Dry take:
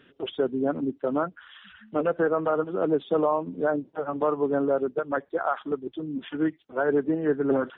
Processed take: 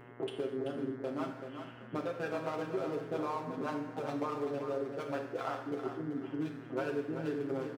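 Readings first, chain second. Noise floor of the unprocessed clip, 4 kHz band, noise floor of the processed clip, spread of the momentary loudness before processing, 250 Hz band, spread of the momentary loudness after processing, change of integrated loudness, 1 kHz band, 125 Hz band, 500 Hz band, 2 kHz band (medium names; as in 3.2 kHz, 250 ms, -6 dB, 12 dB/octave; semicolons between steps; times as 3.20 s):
-60 dBFS, no reading, -50 dBFS, 8 LU, -10.0 dB, 3 LU, -10.5 dB, -9.5 dB, -5.0 dB, -11.5 dB, -9.5 dB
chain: local Wiener filter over 25 samples; comb 7.5 ms; compression 4:1, threshold -38 dBFS, peak gain reduction 18.5 dB; high-pass 85 Hz 24 dB/octave; treble shelf 2.9 kHz +11 dB; gated-style reverb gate 290 ms falling, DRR 2.5 dB; mains buzz 120 Hz, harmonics 18, -55 dBFS -3 dB/octave; on a send: feedback delay 384 ms, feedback 28%, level -8 dB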